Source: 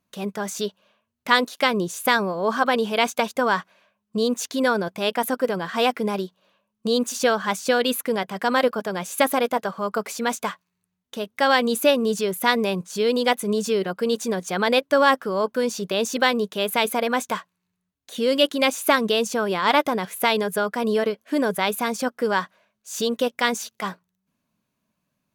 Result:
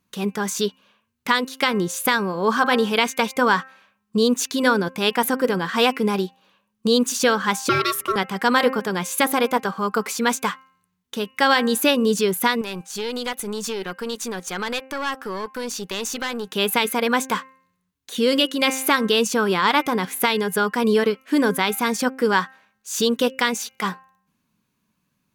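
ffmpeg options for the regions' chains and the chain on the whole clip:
-filter_complex "[0:a]asettb=1/sr,asplit=3[s0][s1][s2];[s0]atrim=end=7.694[s3];[s1]atrim=start=7.69:end=8.16,asetpts=PTS-STARTPTS,afade=t=in:d=0.004:c=qsin,afade=t=out:st=0.466:d=0.004:c=qsin,bandreject=f=92.95:t=h:w=4,bandreject=f=185.9:t=h:w=4,bandreject=f=278.85:t=h:w=4,bandreject=f=371.8:t=h:w=4,bandreject=f=464.75:t=h:w=4,bandreject=f=557.7:t=h:w=4,bandreject=f=650.65:t=h:w=4,bandreject=f=743.6:t=h:w=4,bandreject=f=836.55:t=h:w=4,bandreject=f=929.5:t=h:w=4,bandreject=f=1022.45:t=h:w=4,bandreject=f=1115.4:t=h:w=4,bandreject=f=1208.35:t=h:w=4,bandreject=f=1301.3:t=h:w=4,aeval=exprs='val(0)*sin(2*PI*870*n/s)':c=same[s4];[s2]atrim=start=8.156[s5];[s3][s4]acrossfade=d=0.004:c1=hsin:c2=qsin[s6];[s6][s5]acrossfade=d=0.004:c1=qsin:c2=hsin,asettb=1/sr,asplit=3[s7][s8][s9];[s7]atrim=end=12.614[s10];[s8]atrim=start=12.61:end=16.47,asetpts=PTS-STARTPTS,afade=t=in:d=0.004:c=qsin,afade=t=out:st=3.856:d=0.004:c=qsin,acompressor=threshold=0.0891:ratio=4:attack=3.2:release=140:knee=1:detection=peak,aeval=exprs='(tanh(8.91*val(0)+0.55)-tanh(0.55))/8.91':c=same,lowshelf=f=470:g=-7.5[s11];[s9]atrim=start=16.466[s12];[s10][s11]acrossfade=d=0.004:c1=hsin:c2=qsin[s13];[s13][s12]acrossfade=d=0.004:c1=qsin:c2=hsin,equalizer=f=630:t=o:w=0.34:g=-12.5,bandreject=f=263.6:t=h:w=4,bandreject=f=527.2:t=h:w=4,bandreject=f=790.8:t=h:w=4,bandreject=f=1054.4:t=h:w=4,bandreject=f=1318:t=h:w=4,bandreject=f=1581.6:t=h:w=4,bandreject=f=1845.2:t=h:w=4,bandreject=f=2108.8:t=h:w=4,bandreject=f=2372.4:t=h:w=4,bandreject=f=2636:t=h:w=4,bandreject=f=2899.6:t=h:w=4,alimiter=limit=0.282:level=0:latency=1:release=328,volume=1.78"

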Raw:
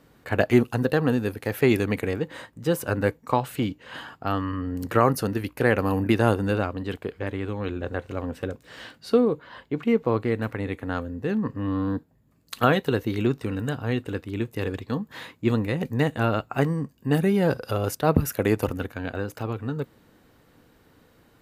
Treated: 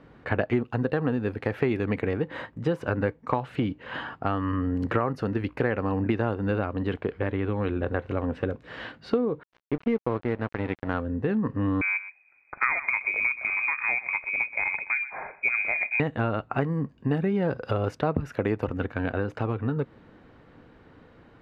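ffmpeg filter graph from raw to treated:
-filter_complex "[0:a]asettb=1/sr,asplit=3[s0][s1][s2];[s0]atrim=end=9.434[s3];[s1]atrim=start=9.43:end=10.94,asetpts=PTS-STARTPTS,afade=t=in:d=0.004:c=qsin,afade=t=out:st=1.506:d=0.004:c=qsin,aeval=exprs='sgn(val(0))*max(abs(val(0))-0.0168,0)':c=same,bandreject=f=7100:w=14[s4];[s2]atrim=start=10.936[s5];[s3][s4]acrossfade=d=0.004:c1=hsin:c2=qsin[s6];[s6][s5]acrossfade=d=0.004:c1=qsin:c2=hsin,asettb=1/sr,asplit=3[s7][s8][s9];[s7]atrim=end=11.814[s10];[s8]atrim=start=11.81:end=16,asetpts=PTS-STARTPTS,afade=t=in:d=0.004:c=qsin,afade=t=out:st=4.186:d=0.004:c=qsin,lowpass=f=2200:t=q:w=0.5098,lowpass=f=2200:t=q:w=0.6013,lowpass=f=2200:t=q:w=0.9,lowpass=f=2200:t=q:w=2.563,afreqshift=-2600,aecho=1:1:124:0.141,atrim=end_sample=184779[s11];[s9]atrim=start=15.996[s12];[s10][s11]acrossfade=d=0.004:c1=hsin:c2=qsin[s13];[s13][s12]acrossfade=d=0.004:c1=qsin:c2=hsin,lowpass=2500,acompressor=threshold=0.0398:ratio=4,volume=1.78"

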